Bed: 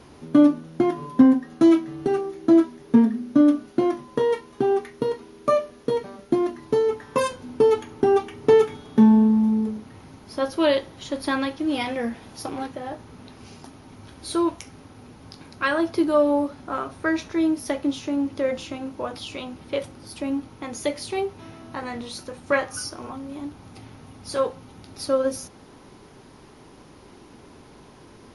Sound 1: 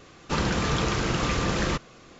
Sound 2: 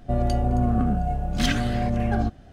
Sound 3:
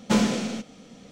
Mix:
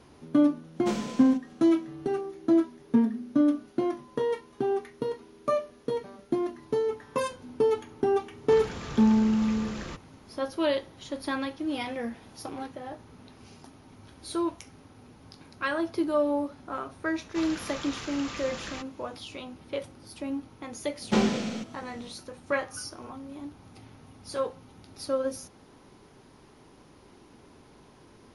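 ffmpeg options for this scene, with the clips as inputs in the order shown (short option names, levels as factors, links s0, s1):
-filter_complex "[3:a]asplit=2[s0][s1];[1:a]asplit=2[s2][s3];[0:a]volume=0.473[s4];[s3]tiltshelf=f=750:g=-5.5[s5];[s1]acrossover=split=6600[s6][s7];[s7]acompressor=threshold=0.00178:ratio=4:attack=1:release=60[s8];[s6][s8]amix=inputs=2:normalize=0[s9];[s0]atrim=end=1.11,asetpts=PTS-STARTPTS,volume=0.282,afade=t=in:d=0.004:c=hsin,afade=t=out:st=1.106:d=0.004:c=hsin,adelay=760[s10];[s2]atrim=end=2.19,asetpts=PTS-STARTPTS,volume=0.224,afade=t=in:d=0.004:c=hsin,afade=t=out:st=2.186:d=0.004:c=hsin,adelay=8190[s11];[s5]atrim=end=2.19,asetpts=PTS-STARTPTS,volume=0.2,afade=t=in:d=0.004:c=hsin,afade=t=out:st=2.186:d=0.004:c=hsin,adelay=17050[s12];[s9]atrim=end=1.11,asetpts=PTS-STARTPTS,volume=0.708,afade=t=in:d=0.004:c=hsin,afade=t=out:st=1.106:d=0.004:c=hsin,adelay=21020[s13];[s4][s10][s11][s12][s13]amix=inputs=5:normalize=0"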